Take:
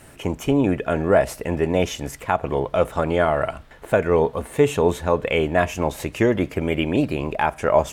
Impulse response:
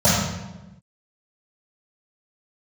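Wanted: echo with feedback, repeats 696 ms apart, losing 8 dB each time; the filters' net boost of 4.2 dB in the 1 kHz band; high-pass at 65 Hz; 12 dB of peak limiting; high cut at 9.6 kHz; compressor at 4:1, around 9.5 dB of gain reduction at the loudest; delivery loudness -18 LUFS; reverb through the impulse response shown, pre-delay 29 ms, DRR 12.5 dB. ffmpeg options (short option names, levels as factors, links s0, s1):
-filter_complex "[0:a]highpass=65,lowpass=9600,equalizer=f=1000:t=o:g=5.5,acompressor=threshold=0.0794:ratio=4,alimiter=limit=0.15:level=0:latency=1,aecho=1:1:696|1392|2088|2784|3480:0.398|0.159|0.0637|0.0255|0.0102,asplit=2[s0][s1];[1:a]atrim=start_sample=2205,adelay=29[s2];[s1][s2]afir=irnorm=-1:irlink=0,volume=0.0178[s3];[s0][s3]amix=inputs=2:normalize=0,volume=3.35"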